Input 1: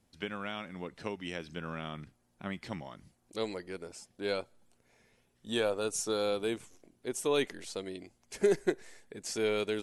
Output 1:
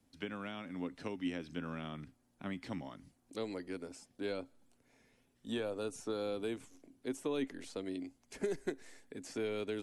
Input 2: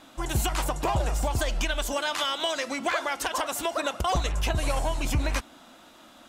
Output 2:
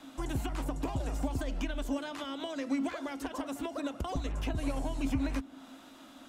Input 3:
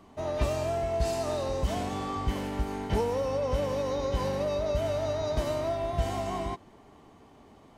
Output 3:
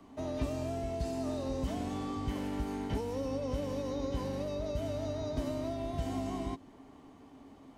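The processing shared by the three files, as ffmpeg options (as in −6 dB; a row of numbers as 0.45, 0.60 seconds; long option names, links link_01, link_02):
-filter_complex "[0:a]acrossover=split=110|510|2800[link_01][link_02][link_03][link_04];[link_01]acompressor=threshold=-31dB:ratio=4[link_05];[link_02]acompressor=threshold=-35dB:ratio=4[link_06];[link_03]acompressor=threshold=-41dB:ratio=4[link_07];[link_04]acompressor=threshold=-50dB:ratio=4[link_08];[link_05][link_06][link_07][link_08]amix=inputs=4:normalize=0,equalizer=frequency=270:width=7.6:gain=13.5,volume=-3dB"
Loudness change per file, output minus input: −6.5, −8.0, −6.0 LU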